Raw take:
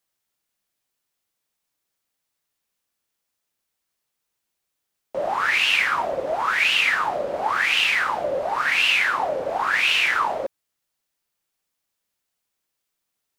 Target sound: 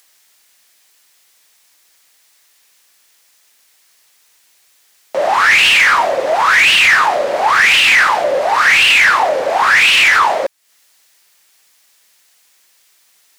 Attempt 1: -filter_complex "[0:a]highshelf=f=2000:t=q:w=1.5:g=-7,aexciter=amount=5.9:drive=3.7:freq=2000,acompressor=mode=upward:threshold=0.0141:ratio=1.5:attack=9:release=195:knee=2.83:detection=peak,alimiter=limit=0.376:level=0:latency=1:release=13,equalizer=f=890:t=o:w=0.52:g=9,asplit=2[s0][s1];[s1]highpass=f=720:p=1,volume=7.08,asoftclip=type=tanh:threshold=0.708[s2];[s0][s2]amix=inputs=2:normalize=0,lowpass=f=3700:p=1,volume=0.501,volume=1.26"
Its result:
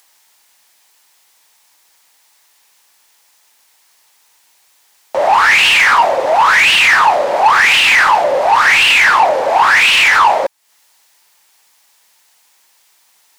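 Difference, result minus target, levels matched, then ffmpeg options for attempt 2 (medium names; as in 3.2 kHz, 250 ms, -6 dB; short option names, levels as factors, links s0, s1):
1 kHz band +2.5 dB
-filter_complex "[0:a]highshelf=f=2000:t=q:w=1.5:g=-7,aexciter=amount=5.9:drive=3.7:freq=2000,acompressor=mode=upward:threshold=0.0141:ratio=1.5:attack=9:release=195:knee=2.83:detection=peak,alimiter=limit=0.376:level=0:latency=1:release=13,asplit=2[s0][s1];[s1]highpass=f=720:p=1,volume=7.08,asoftclip=type=tanh:threshold=0.708[s2];[s0][s2]amix=inputs=2:normalize=0,lowpass=f=3700:p=1,volume=0.501,volume=1.26"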